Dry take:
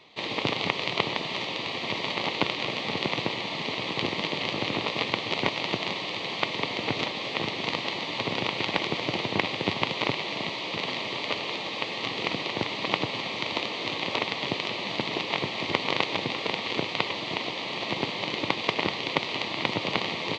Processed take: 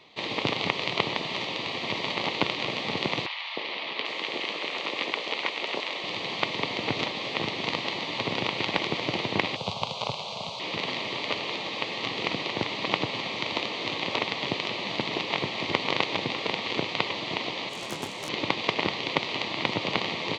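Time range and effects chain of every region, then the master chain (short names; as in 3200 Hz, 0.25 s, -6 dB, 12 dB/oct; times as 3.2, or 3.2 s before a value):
3.26–6.04 HPF 420 Hz + three bands offset in time mids, lows, highs 0.31/0.79 s, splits 840/4900 Hz
9.56–10.6 high shelf 6900 Hz +6.5 dB + fixed phaser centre 770 Hz, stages 4
17.69–18.29 self-modulated delay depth 0.18 ms + detuned doubles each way 41 cents
whole clip: dry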